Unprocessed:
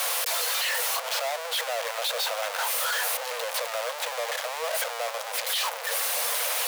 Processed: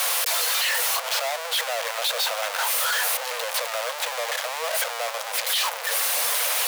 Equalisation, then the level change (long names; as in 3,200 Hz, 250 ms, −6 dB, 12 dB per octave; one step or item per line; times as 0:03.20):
low-shelf EQ 350 Hz −11 dB
+4.0 dB